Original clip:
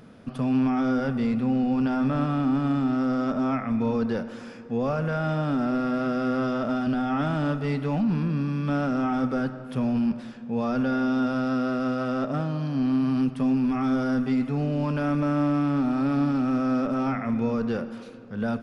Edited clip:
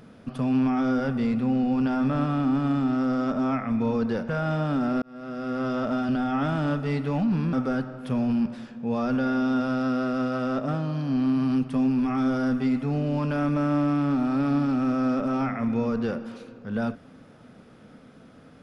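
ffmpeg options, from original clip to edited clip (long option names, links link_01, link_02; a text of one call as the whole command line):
ffmpeg -i in.wav -filter_complex "[0:a]asplit=4[link_01][link_02][link_03][link_04];[link_01]atrim=end=4.292[link_05];[link_02]atrim=start=5.068:end=5.8,asetpts=PTS-STARTPTS,afade=type=out:start_time=0.728:duration=0.004:curve=hsin[link_06];[link_03]atrim=start=5.8:end=8.312,asetpts=PTS-STARTPTS,afade=type=in:duration=0.78[link_07];[link_04]atrim=start=9.188[link_08];[link_06][link_07]concat=n=2:v=0:a=1[link_09];[link_05][link_09]acrossfade=duration=0.004:curve1=hsin:curve2=hsin[link_10];[link_10][link_08]acrossfade=duration=0.004:curve1=hsin:curve2=hsin" out.wav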